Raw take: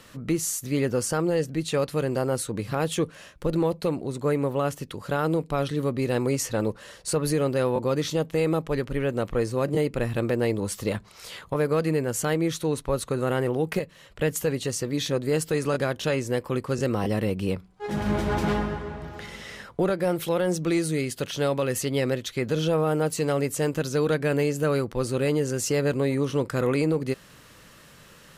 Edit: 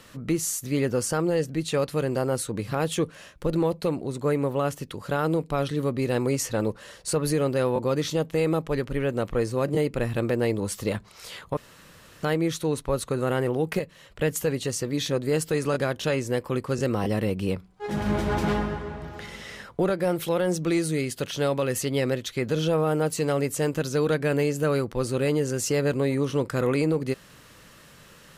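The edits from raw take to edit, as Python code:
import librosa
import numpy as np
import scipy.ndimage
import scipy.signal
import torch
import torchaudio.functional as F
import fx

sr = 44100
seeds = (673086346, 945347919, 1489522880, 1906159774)

y = fx.edit(x, sr, fx.room_tone_fill(start_s=11.57, length_s=0.66), tone=tone)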